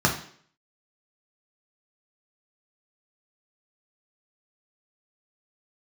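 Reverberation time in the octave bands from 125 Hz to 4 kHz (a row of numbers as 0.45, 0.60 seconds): 0.50, 0.55, 0.60, 0.55, 0.55, 0.55 seconds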